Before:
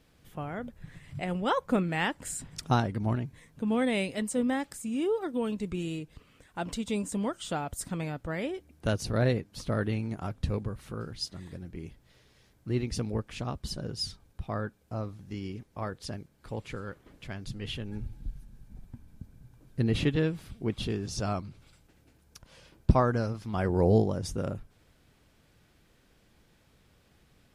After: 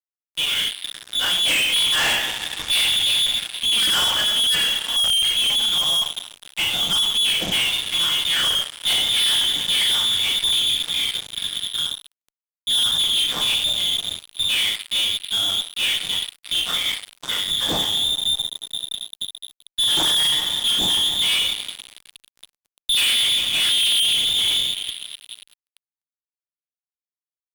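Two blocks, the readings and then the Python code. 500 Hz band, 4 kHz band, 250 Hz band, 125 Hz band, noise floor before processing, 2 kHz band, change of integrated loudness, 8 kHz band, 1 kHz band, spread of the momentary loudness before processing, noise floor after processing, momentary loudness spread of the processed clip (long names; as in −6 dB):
−7.5 dB, +28.5 dB, −9.0 dB, −11.5 dB, −64 dBFS, +14.0 dB, +13.5 dB, +18.0 dB, +2.0 dB, 16 LU, below −85 dBFS, 11 LU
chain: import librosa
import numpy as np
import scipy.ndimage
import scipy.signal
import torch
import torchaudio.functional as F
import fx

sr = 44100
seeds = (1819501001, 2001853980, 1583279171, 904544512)

y = fx.rev_double_slope(x, sr, seeds[0], early_s=0.48, late_s=4.6, knee_db=-21, drr_db=-8.5)
y = fx.freq_invert(y, sr, carrier_hz=3600)
y = fx.fuzz(y, sr, gain_db=30.0, gate_db=-35.0)
y = y * 10.0 ** (-4.0 / 20.0)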